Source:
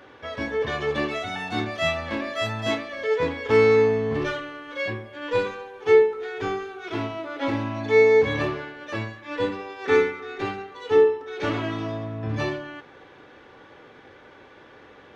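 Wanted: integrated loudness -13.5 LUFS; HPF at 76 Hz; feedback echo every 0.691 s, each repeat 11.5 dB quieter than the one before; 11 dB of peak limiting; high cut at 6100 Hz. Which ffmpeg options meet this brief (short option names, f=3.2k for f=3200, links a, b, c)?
-af "highpass=76,lowpass=6.1k,alimiter=limit=-18.5dB:level=0:latency=1,aecho=1:1:691|1382|2073:0.266|0.0718|0.0194,volume=15dB"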